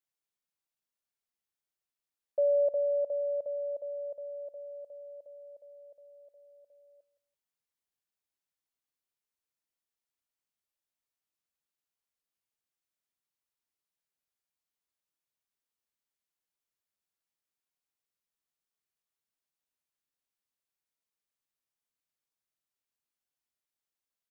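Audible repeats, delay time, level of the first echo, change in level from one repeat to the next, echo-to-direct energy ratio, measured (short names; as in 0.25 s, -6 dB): 2, 0.168 s, -18.0 dB, -11.0 dB, -17.5 dB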